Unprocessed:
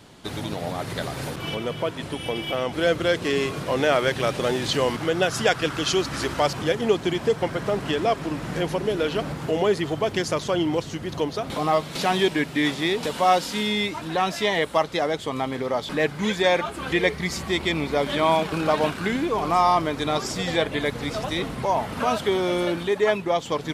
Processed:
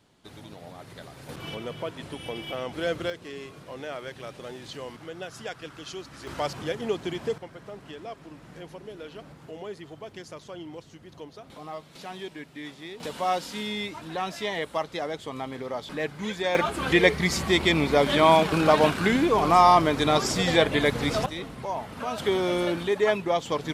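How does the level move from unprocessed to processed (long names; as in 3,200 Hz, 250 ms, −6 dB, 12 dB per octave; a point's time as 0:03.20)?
−14.5 dB
from 0:01.29 −7 dB
from 0:03.10 −16 dB
from 0:06.27 −7.5 dB
from 0:07.38 −17 dB
from 0:13.00 −7.5 dB
from 0:16.55 +2.5 dB
from 0:21.26 −8.5 dB
from 0:22.18 −2 dB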